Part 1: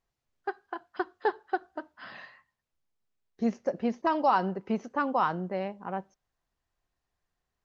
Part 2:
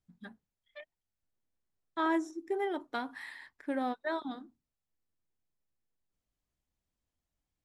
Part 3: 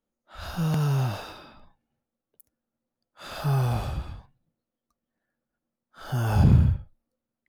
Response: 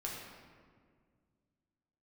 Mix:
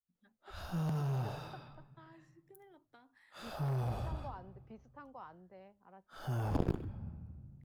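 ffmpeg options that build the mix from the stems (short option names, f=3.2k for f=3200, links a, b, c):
-filter_complex "[0:a]volume=-15dB[a];[1:a]acompressor=threshold=-36dB:ratio=6,volume=-12dB[b];[2:a]adelay=150,volume=0dB,asplit=2[c][d];[d]volume=-13.5dB[e];[3:a]atrim=start_sample=2205[f];[e][f]afir=irnorm=-1:irlink=0[g];[a][b][c][g]amix=inputs=4:normalize=0,aeval=exprs='0.531*(cos(1*acos(clip(val(0)/0.531,-1,1)))-cos(1*PI/2))+0.237*(cos(3*acos(clip(val(0)/0.531,-1,1)))-cos(3*PI/2))':c=same,adynamicequalizer=threshold=0.00355:dfrequency=790:dqfactor=0.86:tfrequency=790:tqfactor=0.86:attack=5:release=100:ratio=0.375:range=2:mode=boostabove:tftype=bell,acrossover=split=280|690[h][i][j];[h]acompressor=threshold=-32dB:ratio=4[k];[i]acompressor=threshold=-40dB:ratio=4[l];[j]acompressor=threshold=-48dB:ratio=4[m];[k][l][m]amix=inputs=3:normalize=0"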